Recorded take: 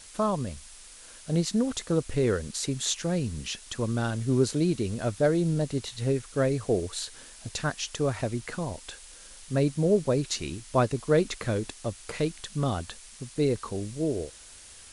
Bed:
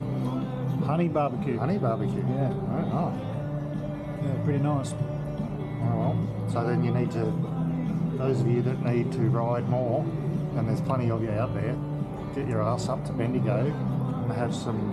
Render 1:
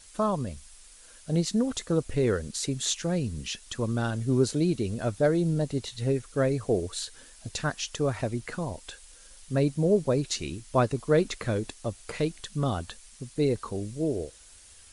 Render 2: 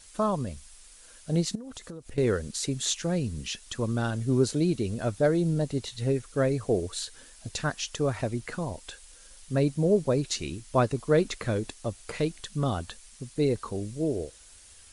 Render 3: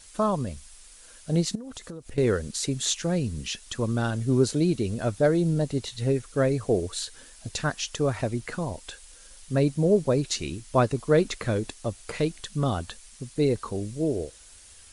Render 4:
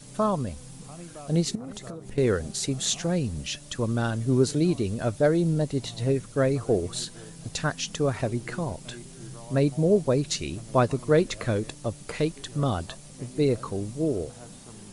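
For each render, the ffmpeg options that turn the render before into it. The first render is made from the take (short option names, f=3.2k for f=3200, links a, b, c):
-af "afftdn=nr=6:nf=-49"
-filter_complex "[0:a]asettb=1/sr,asplit=3[a][b][c];[a]atrim=end=1.554[d];[b]atrim=start=1.55:end=2.18,asetpts=PTS-STARTPTS,afade=t=in:d=0.004:c=qsin,afade=t=out:st=0.626:d=0.004:c=qsin,acompressor=threshold=-37dB:ratio=12:attack=3.2:release=140:knee=1:detection=peak[e];[c]atrim=start=2.176[f];[d][e]acrossfade=d=0.004:c1=hsin:c2=qsin[g];[g][f]acrossfade=d=0.004:c1=qsin:c2=hsin"
-af "volume=2dB"
-filter_complex "[1:a]volume=-18dB[a];[0:a][a]amix=inputs=2:normalize=0"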